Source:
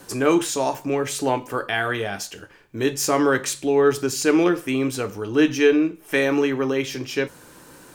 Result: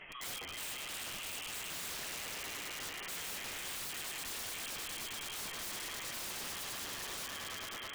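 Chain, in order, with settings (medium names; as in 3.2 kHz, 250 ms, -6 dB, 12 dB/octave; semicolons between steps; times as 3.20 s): high-pass 800 Hz 12 dB/octave; frequency inversion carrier 3.6 kHz; level-controlled noise filter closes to 2.7 kHz, open at -24.5 dBFS; upward compressor, threshold -30 dBFS; gate -42 dBFS, range -9 dB; echo with a slow build-up 107 ms, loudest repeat 5, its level -8 dB; spring tank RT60 2.8 s, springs 36 ms, chirp 60 ms, DRR 15.5 dB; flange 0.99 Hz, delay 4.8 ms, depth 6.7 ms, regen +48%; integer overflow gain 27.5 dB; peak limiter -32 dBFS, peak gain reduction 4.5 dB; trim -5 dB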